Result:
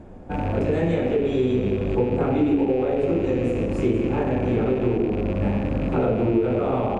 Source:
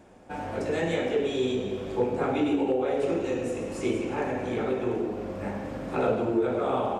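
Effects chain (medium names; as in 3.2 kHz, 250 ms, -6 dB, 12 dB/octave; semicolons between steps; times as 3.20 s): rattle on loud lows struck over -38 dBFS, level -28 dBFS; compression 2.5:1, threshold -28 dBFS, peak gain reduction 6 dB; tilt EQ -3.5 dB/octave; band-stop 5.5 kHz, Q 20; trim +4 dB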